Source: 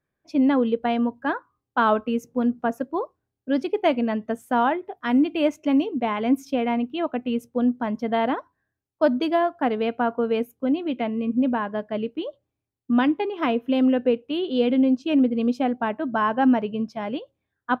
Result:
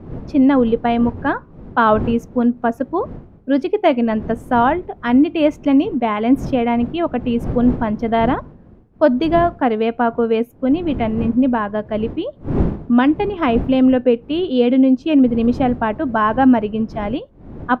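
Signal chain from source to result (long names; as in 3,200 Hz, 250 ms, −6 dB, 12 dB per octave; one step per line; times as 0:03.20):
wind on the microphone 230 Hz −36 dBFS
high-shelf EQ 4,000 Hz −8 dB
level +6.5 dB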